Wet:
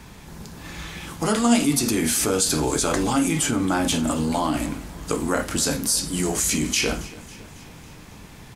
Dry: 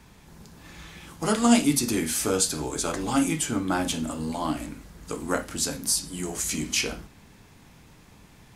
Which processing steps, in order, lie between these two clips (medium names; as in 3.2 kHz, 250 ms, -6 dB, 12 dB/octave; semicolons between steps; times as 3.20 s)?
in parallel at +1 dB: compressor with a negative ratio -31 dBFS, ratio -1; on the sum: feedback delay 275 ms, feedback 59%, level -20 dB